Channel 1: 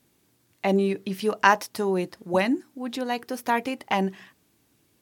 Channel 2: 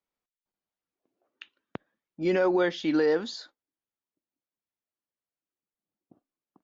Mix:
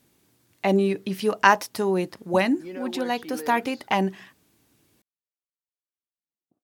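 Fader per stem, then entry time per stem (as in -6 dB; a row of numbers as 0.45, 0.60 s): +1.5, -12.5 dB; 0.00, 0.40 s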